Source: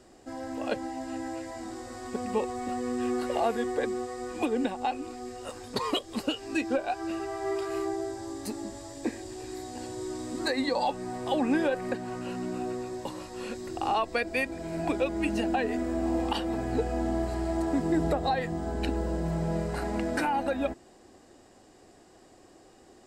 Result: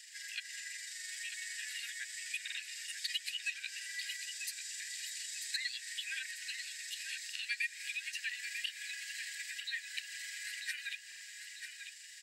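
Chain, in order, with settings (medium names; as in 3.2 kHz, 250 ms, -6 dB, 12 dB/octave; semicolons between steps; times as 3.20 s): steep high-pass 1.7 kHz 96 dB/octave; compression 2:1, threshold -57 dBFS, peak gain reduction 16 dB; granular stretch 0.53×, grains 84 ms; on a send: feedback delay 943 ms, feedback 45%, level -8 dB; on the sum: buffer glitch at 2.43/11.07 s, samples 2048, times 2; trim +12.5 dB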